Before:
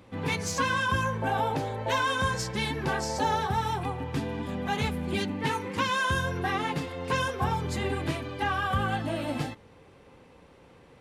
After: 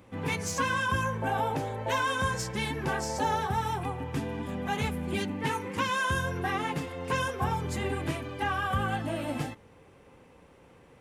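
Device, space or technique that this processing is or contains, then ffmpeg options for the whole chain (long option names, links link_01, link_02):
exciter from parts: -filter_complex "[0:a]asplit=2[link_01][link_02];[link_02]highpass=frequency=3900:width=0.5412,highpass=frequency=3900:width=1.3066,asoftclip=type=tanh:threshold=-30dB,volume=-5.5dB[link_03];[link_01][link_03]amix=inputs=2:normalize=0,volume=-1.5dB"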